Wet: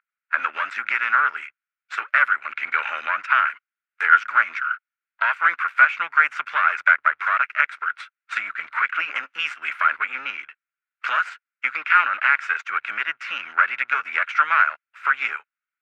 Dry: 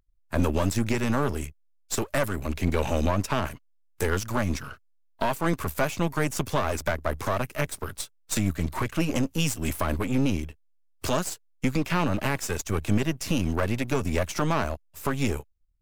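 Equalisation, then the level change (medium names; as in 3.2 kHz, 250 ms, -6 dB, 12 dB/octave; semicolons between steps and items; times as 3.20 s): resonant high-pass 1.4 kHz, resonance Q 8.5; resonant low-pass 2.3 kHz, resonance Q 3.2; -1.0 dB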